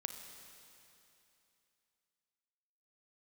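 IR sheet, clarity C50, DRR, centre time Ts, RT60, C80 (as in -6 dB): 6.5 dB, 6.0 dB, 48 ms, 2.9 s, 7.5 dB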